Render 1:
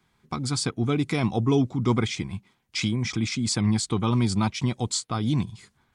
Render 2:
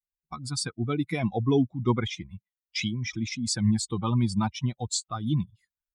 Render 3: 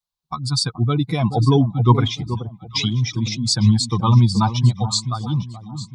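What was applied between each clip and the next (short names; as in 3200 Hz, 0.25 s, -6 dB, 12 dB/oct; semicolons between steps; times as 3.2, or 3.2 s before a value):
per-bin expansion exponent 2; gain +1.5 dB
ending faded out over 1.23 s; graphic EQ 125/1000/2000/4000 Hz +10/+11/-7/+11 dB; echo with dull and thin repeats by turns 0.427 s, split 930 Hz, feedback 50%, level -10 dB; gain +3 dB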